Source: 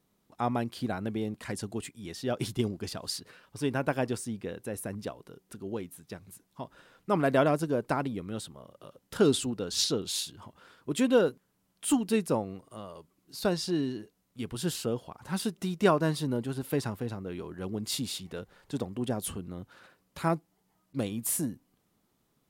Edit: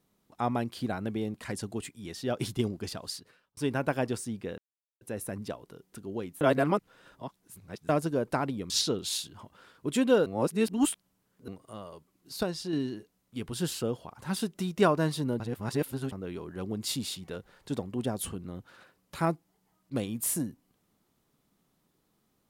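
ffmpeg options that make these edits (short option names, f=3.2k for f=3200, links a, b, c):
-filter_complex "[0:a]asplit=12[a][b][c][d][e][f][g][h][i][j][k][l];[a]atrim=end=3.57,asetpts=PTS-STARTPTS,afade=t=out:st=2.91:d=0.66[m];[b]atrim=start=3.57:end=4.58,asetpts=PTS-STARTPTS,afade=t=in:d=0.004:c=hsin,afade=t=out:st=1.006:d=0.004:c=hsin,apad=pad_dur=0.43[n];[c]atrim=start=4.58:end=5.982,asetpts=PTS-STARTPTS,afade=t=in:d=0.004:c=hsin[o];[d]atrim=start=5.978:end=7.462,asetpts=PTS-STARTPTS,areverse[p];[e]atrim=start=7.458:end=8.272[q];[f]atrim=start=9.728:end=11.292[r];[g]atrim=start=11.288:end=12.512,asetpts=PTS-STARTPTS,areverse[s];[h]atrim=start=12.508:end=13.462[t];[i]atrim=start=13.458:end=13.762,asetpts=PTS-STARTPTS,volume=-4.5dB[u];[j]atrim=start=13.758:end=16.432[v];[k]atrim=start=16.428:end=17.152,asetpts=PTS-STARTPTS,areverse[w];[l]atrim=start=17.148[x];[m][n][o]concat=n=3:v=0:a=1[y];[y][p]acrossfade=d=0.004:c1=hsin:c2=hsin[z];[z][q]acrossfade=d=0.004:c1=hsin:c2=hsin[aa];[aa][r]acrossfade=d=0.004:c1=hsin:c2=hsin[ab];[ab][s]acrossfade=d=0.004:c1=hsin:c2=hsin[ac];[ac][t]acrossfade=d=0.004:c1=hsin:c2=hsin[ad];[ad][u]acrossfade=d=0.004:c1=hsin:c2=hsin[ae];[ae][v]acrossfade=d=0.004:c1=hsin:c2=hsin[af];[af][w]acrossfade=d=0.004:c1=hsin:c2=hsin[ag];[ag][x]acrossfade=d=0.004:c1=hsin:c2=hsin"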